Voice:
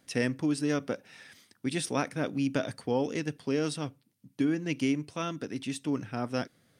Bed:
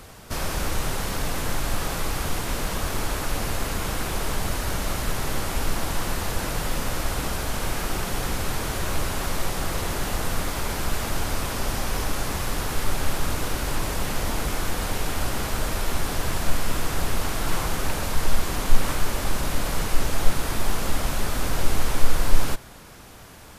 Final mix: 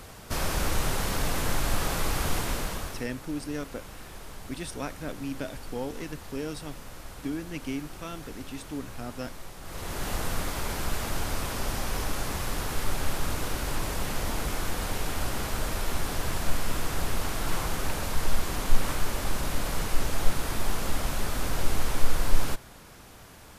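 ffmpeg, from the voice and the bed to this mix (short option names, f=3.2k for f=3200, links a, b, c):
-filter_complex "[0:a]adelay=2850,volume=-5.5dB[a];[1:a]volume=11.5dB,afade=t=out:st=2.38:d=0.69:silence=0.16788,afade=t=in:st=9.62:d=0.49:silence=0.237137[b];[a][b]amix=inputs=2:normalize=0"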